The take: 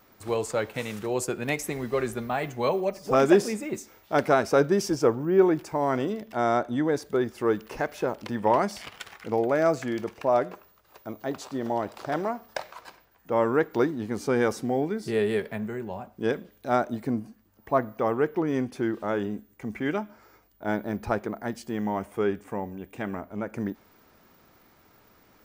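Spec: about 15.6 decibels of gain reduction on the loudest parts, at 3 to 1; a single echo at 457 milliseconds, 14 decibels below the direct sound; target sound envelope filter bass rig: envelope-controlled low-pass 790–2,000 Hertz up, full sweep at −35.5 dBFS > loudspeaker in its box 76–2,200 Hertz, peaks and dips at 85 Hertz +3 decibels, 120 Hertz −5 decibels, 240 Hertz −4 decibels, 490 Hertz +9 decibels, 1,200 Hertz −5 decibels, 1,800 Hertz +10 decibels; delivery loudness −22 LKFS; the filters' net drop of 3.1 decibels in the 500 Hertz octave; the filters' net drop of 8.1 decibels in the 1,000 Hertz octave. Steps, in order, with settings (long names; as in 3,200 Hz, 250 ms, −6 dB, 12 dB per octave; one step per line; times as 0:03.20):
parametric band 500 Hz −7 dB
parametric band 1,000 Hz −8.5 dB
downward compressor 3 to 1, threshold −40 dBFS
single-tap delay 457 ms −14 dB
envelope-controlled low-pass 790–2,000 Hz up, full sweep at −35.5 dBFS
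loudspeaker in its box 76–2,200 Hz, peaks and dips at 85 Hz +3 dB, 120 Hz −5 dB, 240 Hz −4 dB, 490 Hz +9 dB, 1,200 Hz −5 dB, 1,800 Hz +10 dB
level +15.5 dB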